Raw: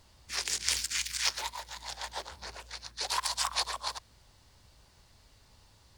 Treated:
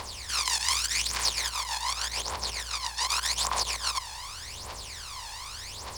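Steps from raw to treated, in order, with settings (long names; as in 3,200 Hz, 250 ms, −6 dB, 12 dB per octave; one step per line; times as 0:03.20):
compressor on every frequency bin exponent 0.4
phase shifter 0.85 Hz, delay 1.2 ms, feedback 71%
level −4 dB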